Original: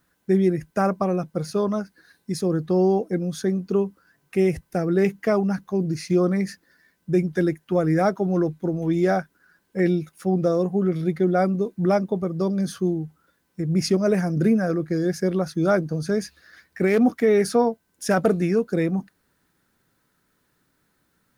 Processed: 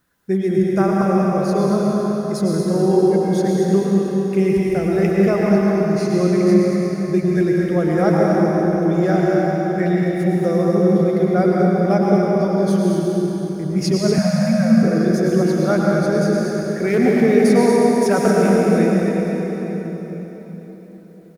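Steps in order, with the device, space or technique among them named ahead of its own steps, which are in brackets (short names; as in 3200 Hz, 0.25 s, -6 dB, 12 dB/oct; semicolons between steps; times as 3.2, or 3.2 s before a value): cave (echo 0.233 s -8 dB; reverb RT60 4.2 s, pre-delay 95 ms, DRR -3.5 dB); 14.18–14.83 elliptic band-stop 230–550 Hz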